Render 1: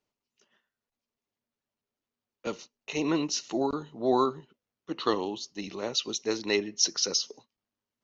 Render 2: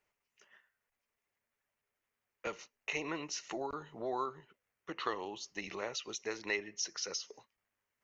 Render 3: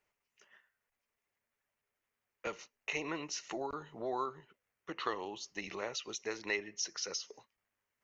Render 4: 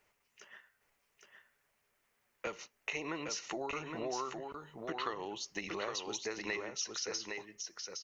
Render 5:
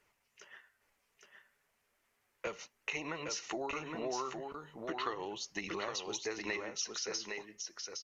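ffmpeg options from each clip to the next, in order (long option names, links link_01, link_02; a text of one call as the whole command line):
ffmpeg -i in.wav -af "acompressor=threshold=-40dB:ratio=2.5,equalizer=frequency=125:width_type=o:width=1:gain=-3,equalizer=frequency=250:width_type=o:width=1:gain=-10,equalizer=frequency=2000:width_type=o:width=1:gain=9,equalizer=frequency=4000:width_type=o:width=1:gain=-8,volume=2.5dB" out.wav
ffmpeg -i in.wav -af anull out.wav
ffmpeg -i in.wav -filter_complex "[0:a]acompressor=threshold=-49dB:ratio=2.5,asplit=2[link_01][link_02];[link_02]aecho=0:1:814:0.562[link_03];[link_01][link_03]amix=inputs=2:normalize=0,volume=8.5dB" out.wav
ffmpeg -i in.wav -af "flanger=delay=0.6:depth=4.7:regen=-64:speed=0.35:shape=triangular,aresample=32000,aresample=44100,volume=4.5dB" out.wav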